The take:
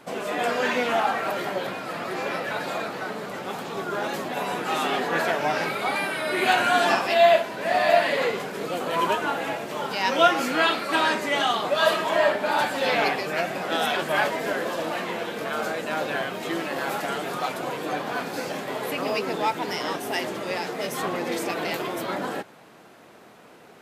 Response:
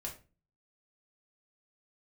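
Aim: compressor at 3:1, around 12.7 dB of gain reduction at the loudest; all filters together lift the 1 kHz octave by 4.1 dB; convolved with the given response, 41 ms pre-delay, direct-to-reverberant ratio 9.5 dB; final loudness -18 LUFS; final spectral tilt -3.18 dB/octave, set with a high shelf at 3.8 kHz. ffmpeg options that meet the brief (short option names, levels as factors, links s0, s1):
-filter_complex "[0:a]equalizer=f=1000:t=o:g=5.5,highshelf=f=3800:g=3.5,acompressor=threshold=0.0398:ratio=3,asplit=2[s0][s1];[1:a]atrim=start_sample=2205,adelay=41[s2];[s1][s2]afir=irnorm=-1:irlink=0,volume=0.398[s3];[s0][s3]amix=inputs=2:normalize=0,volume=3.55"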